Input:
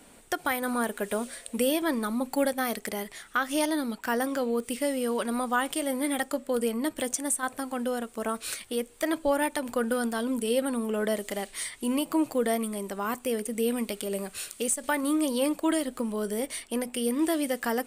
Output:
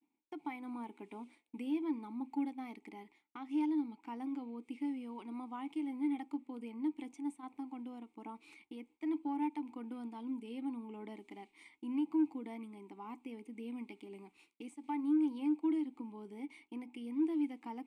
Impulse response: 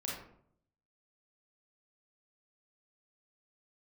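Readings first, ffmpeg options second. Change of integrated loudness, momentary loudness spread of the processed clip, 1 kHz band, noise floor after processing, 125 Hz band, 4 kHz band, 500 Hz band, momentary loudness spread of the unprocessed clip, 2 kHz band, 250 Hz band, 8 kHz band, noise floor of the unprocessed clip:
-10.5 dB, 17 LU, -14.0 dB, -77 dBFS, no reading, under -20 dB, -20.5 dB, 6 LU, -23.0 dB, -7.0 dB, under -35 dB, -53 dBFS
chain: -filter_complex "[0:a]asplit=3[s0][s1][s2];[s0]bandpass=f=300:t=q:w=8,volume=1[s3];[s1]bandpass=f=870:t=q:w=8,volume=0.501[s4];[s2]bandpass=f=2240:t=q:w=8,volume=0.355[s5];[s3][s4][s5]amix=inputs=3:normalize=0,agate=range=0.0224:threshold=0.002:ratio=3:detection=peak,aeval=exprs='0.0944*(cos(1*acos(clip(val(0)/0.0944,-1,1)))-cos(1*PI/2))+0.00211*(cos(5*acos(clip(val(0)/0.0944,-1,1)))-cos(5*PI/2))':c=same,volume=0.708"

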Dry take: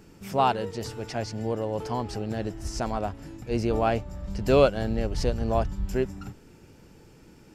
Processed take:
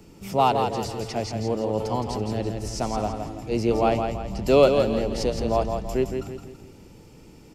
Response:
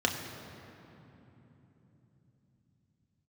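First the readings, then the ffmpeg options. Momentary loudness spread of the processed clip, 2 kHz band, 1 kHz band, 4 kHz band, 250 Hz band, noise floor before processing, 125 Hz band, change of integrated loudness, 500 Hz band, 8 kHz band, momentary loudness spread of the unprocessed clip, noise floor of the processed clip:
11 LU, +0.5 dB, +3.5 dB, +4.0 dB, +3.0 dB, -53 dBFS, +1.0 dB, +3.0 dB, +4.0 dB, +4.0 dB, 11 LU, -49 dBFS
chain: -filter_complex "[0:a]equalizer=f=1600:w=4.4:g=-10.5,bandreject=f=1100:w=29,acrossover=split=170|800|2000[s0][s1][s2][s3];[s0]volume=56.2,asoftclip=hard,volume=0.0178[s4];[s4][s1][s2][s3]amix=inputs=4:normalize=0,aecho=1:1:166|332|498|664|830:0.501|0.205|0.0842|0.0345|0.0142,volume=1.41"

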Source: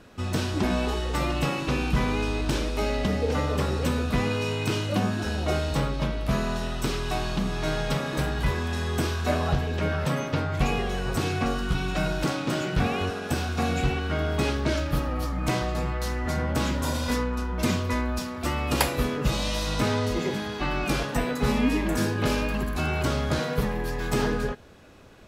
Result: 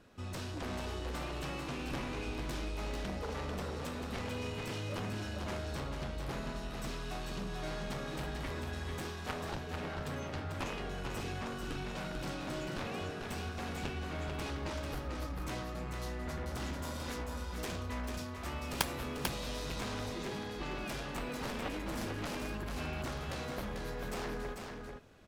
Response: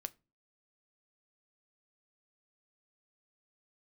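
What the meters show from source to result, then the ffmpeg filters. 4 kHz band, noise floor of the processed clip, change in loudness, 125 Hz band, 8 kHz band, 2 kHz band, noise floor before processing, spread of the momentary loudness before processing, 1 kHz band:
-11.0 dB, -43 dBFS, -12.5 dB, -13.5 dB, -10.5 dB, -11.5 dB, -33 dBFS, 4 LU, -11.5 dB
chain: -af "aeval=exprs='0.631*(cos(1*acos(clip(val(0)/0.631,-1,1)))-cos(1*PI/2))+0.0631*(cos(3*acos(clip(val(0)/0.631,-1,1)))-cos(3*PI/2))+0.0398*(cos(5*acos(clip(val(0)/0.631,-1,1)))-cos(5*PI/2))+0.141*(cos(7*acos(clip(val(0)/0.631,-1,1)))-cos(7*PI/2))':c=same,aecho=1:1:443:0.562,volume=0.531"

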